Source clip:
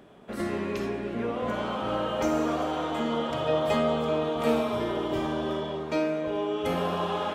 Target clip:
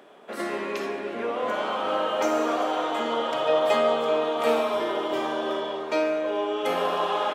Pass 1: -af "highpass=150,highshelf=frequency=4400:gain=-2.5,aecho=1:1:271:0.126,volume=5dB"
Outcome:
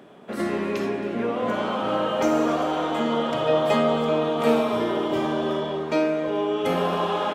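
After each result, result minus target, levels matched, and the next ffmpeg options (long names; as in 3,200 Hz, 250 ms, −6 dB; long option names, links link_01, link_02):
echo 126 ms late; 125 Hz band +13.0 dB
-af "highpass=150,highshelf=frequency=4400:gain=-2.5,aecho=1:1:145:0.126,volume=5dB"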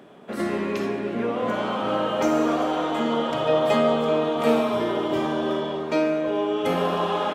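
125 Hz band +12.0 dB
-af "highpass=430,highshelf=frequency=4400:gain=-2.5,aecho=1:1:145:0.126,volume=5dB"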